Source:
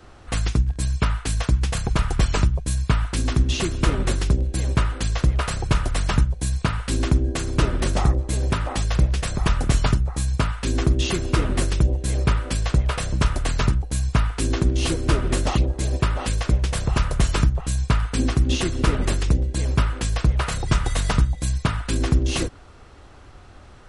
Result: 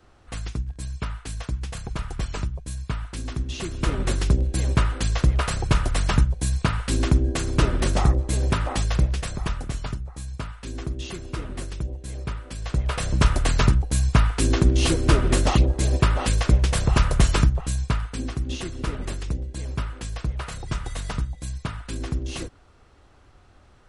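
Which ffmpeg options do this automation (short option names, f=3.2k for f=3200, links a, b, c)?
-af "volume=13dB,afade=t=in:st=3.53:d=0.79:silence=0.354813,afade=t=out:st=8.74:d=0.98:silence=0.281838,afade=t=in:st=12.56:d=0.7:silence=0.223872,afade=t=out:st=17.19:d=1.01:silence=0.298538"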